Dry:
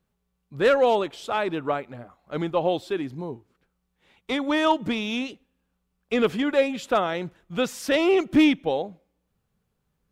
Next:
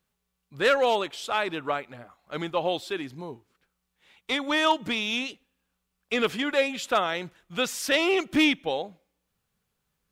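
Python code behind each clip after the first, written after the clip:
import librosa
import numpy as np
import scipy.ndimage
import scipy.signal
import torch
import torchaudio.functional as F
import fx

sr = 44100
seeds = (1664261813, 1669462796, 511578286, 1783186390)

y = fx.tilt_shelf(x, sr, db=-5.5, hz=970.0)
y = y * 10.0 ** (-1.0 / 20.0)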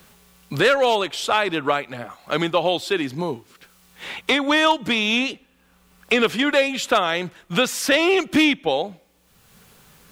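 y = fx.band_squash(x, sr, depth_pct=70)
y = y * 10.0 ** (6.5 / 20.0)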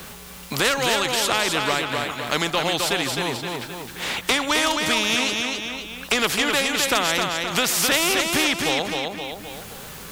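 y = fx.echo_feedback(x, sr, ms=261, feedback_pct=32, wet_db=-7.0)
y = fx.spectral_comp(y, sr, ratio=2.0)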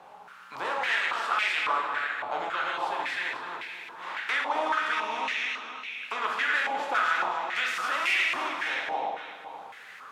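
y = fx.rev_plate(x, sr, seeds[0], rt60_s=1.4, hf_ratio=0.8, predelay_ms=0, drr_db=-1.5)
y = fx.filter_held_bandpass(y, sr, hz=3.6, low_hz=810.0, high_hz=2200.0)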